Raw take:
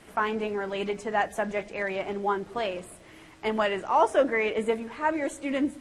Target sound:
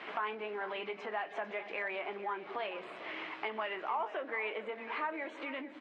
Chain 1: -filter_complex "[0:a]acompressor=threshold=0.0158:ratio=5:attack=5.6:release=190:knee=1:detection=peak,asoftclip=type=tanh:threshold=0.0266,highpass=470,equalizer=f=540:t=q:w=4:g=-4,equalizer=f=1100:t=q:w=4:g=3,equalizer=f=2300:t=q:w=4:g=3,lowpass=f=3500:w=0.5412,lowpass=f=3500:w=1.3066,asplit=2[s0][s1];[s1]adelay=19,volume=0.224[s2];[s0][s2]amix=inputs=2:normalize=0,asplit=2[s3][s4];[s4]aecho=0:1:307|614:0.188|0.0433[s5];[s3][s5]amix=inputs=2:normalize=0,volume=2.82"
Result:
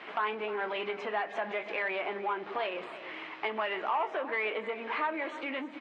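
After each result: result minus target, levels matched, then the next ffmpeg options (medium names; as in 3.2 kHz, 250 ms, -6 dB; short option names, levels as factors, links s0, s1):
echo 140 ms early; compression: peak gain reduction -6 dB
-filter_complex "[0:a]acompressor=threshold=0.0158:ratio=5:attack=5.6:release=190:knee=1:detection=peak,asoftclip=type=tanh:threshold=0.0266,highpass=470,equalizer=f=540:t=q:w=4:g=-4,equalizer=f=1100:t=q:w=4:g=3,equalizer=f=2300:t=q:w=4:g=3,lowpass=f=3500:w=0.5412,lowpass=f=3500:w=1.3066,asplit=2[s0][s1];[s1]adelay=19,volume=0.224[s2];[s0][s2]amix=inputs=2:normalize=0,asplit=2[s3][s4];[s4]aecho=0:1:447|894:0.188|0.0433[s5];[s3][s5]amix=inputs=2:normalize=0,volume=2.82"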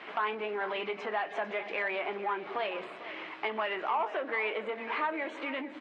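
compression: peak gain reduction -6 dB
-filter_complex "[0:a]acompressor=threshold=0.00668:ratio=5:attack=5.6:release=190:knee=1:detection=peak,asoftclip=type=tanh:threshold=0.0266,highpass=470,equalizer=f=540:t=q:w=4:g=-4,equalizer=f=1100:t=q:w=4:g=3,equalizer=f=2300:t=q:w=4:g=3,lowpass=f=3500:w=0.5412,lowpass=f=3500:w=1.3066,asplit=2[s0][s1];[s1]adelay=19,volume=0.224[s2];[s0][s2]amix=inputs=2:normalize=0,asplit=2[s3][s4];[s4]aecho=0:1:447|894:0.188|0.0433[s5];[s3][s5]amix=inputs=2:normalize=0,volume=2.82"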